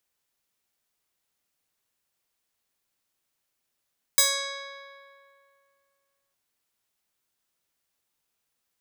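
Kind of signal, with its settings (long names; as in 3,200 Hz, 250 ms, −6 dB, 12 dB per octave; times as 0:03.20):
Karplus-Strong string C#5, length 2.16 s, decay 2.40 s, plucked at 0.39, bright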